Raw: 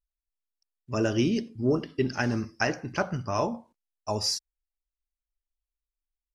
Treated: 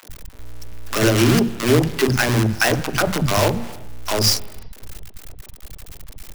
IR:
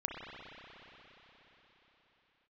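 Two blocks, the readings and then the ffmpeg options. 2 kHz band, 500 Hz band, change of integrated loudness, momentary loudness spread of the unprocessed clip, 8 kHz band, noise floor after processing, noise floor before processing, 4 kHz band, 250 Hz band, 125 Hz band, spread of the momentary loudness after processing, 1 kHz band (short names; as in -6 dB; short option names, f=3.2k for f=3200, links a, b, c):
+11.5 dB, +9.0 dB, +10.5 dB, 7 LU, +13.5 dB, -43 dBFS, under -85 dBFS, +12.0 dB, +8.5 dB, +12.5 dB, 10 LU, +9.0 dB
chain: -filter_complex "[0:a]aeval=exprs='val(0)+0.5*0.0119*sgn(val(0))':c=same,aeval=exprs='val(0)+0.00158*(sin(2*PI*60*n/s)+sin(2*PI*2*60*n/s)/2+sin(2*PI*3*60*n/s)/3+sin(2*PI*4*60*n/s)/4+sin(2*PI*5*60*n/s)/5)':c=same,acrossover=split=130[a][b];[a]acontrast=26[c];[c][b]amix=inputs=2:normalize=0,acrusher=bits=5:dc=4:mix=0:aa=0.000001,acrossover=split=230|860[d][e][f];[e]adelay=30[g];[d]adelay=90[h];[h][g][f]amix=inputs=3:normalize=0,asplit=2[i][j];[1:a]atrim=start_sample=2205,afade=t=out:st=0.43:d=0.01,atrim=end_sample=19404[k];[j][k]afir=irnorm=-1:irlink=0,volume=-16.5dB[l];[i][l]amix=inputs=2:normalize=0,volume=8.5dB"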